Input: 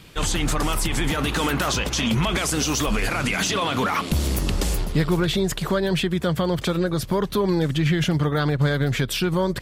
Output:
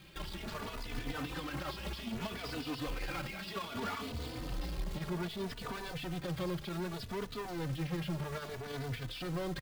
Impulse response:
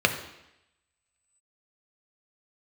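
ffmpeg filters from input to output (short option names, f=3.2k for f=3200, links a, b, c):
-filter_complex "[0:a]aresample=11025,volume=23.5dB,asoftclip=hard,volume=-23.5dB,aresample=44100,acrusher=bits=2:mode=log:mix=0:aa=0.000001,alimiter=level_in=2dB:limit=-24dB:level=0:latency=1:release=29,volume=-2dB,bandreject=f=50:t=h:w=6,bandreject=f=100:t=h:w=6,bandreject=f=150:t=h:w=6,asplit=2[a][b];[b]adelay=3.3,afreqshift=0.63[c];[a][c]amix=inputs=2:normalize=1,volume=-6.5dB"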